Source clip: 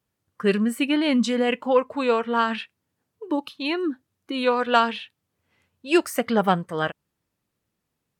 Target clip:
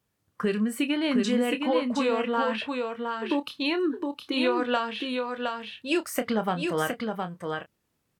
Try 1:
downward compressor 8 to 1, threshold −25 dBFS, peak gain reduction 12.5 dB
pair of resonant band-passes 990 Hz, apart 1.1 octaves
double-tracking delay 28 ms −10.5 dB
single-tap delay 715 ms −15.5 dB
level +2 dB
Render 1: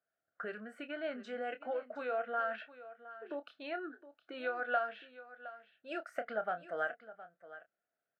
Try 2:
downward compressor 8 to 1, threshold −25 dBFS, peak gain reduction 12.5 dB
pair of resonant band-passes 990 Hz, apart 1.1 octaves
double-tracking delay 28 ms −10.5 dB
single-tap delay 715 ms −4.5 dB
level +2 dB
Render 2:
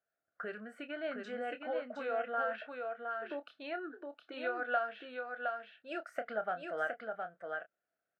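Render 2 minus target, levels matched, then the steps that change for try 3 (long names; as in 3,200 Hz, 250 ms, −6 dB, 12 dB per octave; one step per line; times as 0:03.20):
1,000 Hz band +3.5 dB
remove: pair of resonant band-passes 990 Hz, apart 1.1 octaves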